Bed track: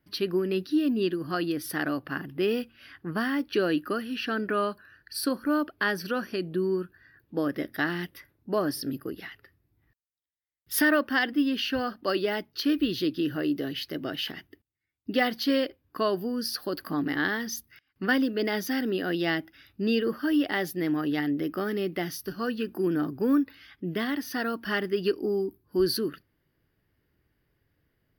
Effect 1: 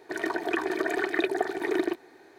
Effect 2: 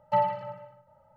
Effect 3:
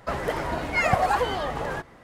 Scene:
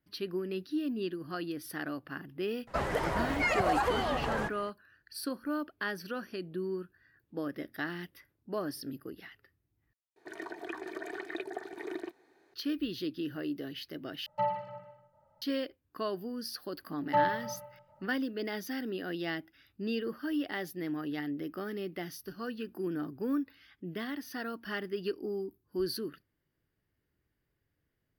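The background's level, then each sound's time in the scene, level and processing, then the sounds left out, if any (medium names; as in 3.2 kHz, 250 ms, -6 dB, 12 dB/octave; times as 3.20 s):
bed track -8.5 dB
2.67 s: add 3 -3 dB + peak limiter -16.5 dBFS
10.16 s: replace with 1 -12.5 dB
14.26 s: replace with 2 -6.5 dB
17.01 s: add 2 -2.5 dB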